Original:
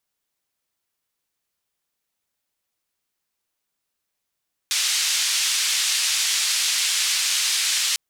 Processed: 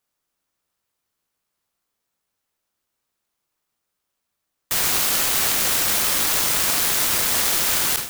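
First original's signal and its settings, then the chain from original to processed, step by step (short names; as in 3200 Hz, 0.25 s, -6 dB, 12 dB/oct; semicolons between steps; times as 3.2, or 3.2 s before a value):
noise band 2500–6800 Hz, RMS -22 dBFS 3.25 s
spectral trails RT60 0.56 s; bell 1300 Hz +6 dB; clock jitter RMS 0.13 ms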